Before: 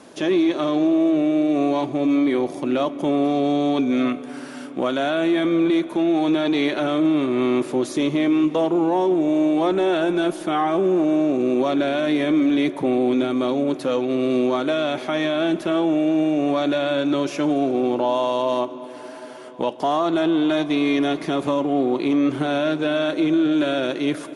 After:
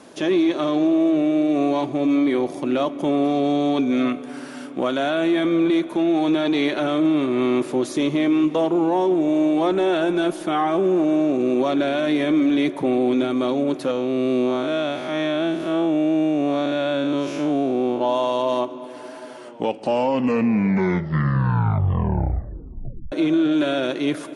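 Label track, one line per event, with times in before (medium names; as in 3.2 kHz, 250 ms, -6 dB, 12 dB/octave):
13.910000	18.010000	spectral blur width 126 ms
19.330000	19.330000	tape stop 3.79 s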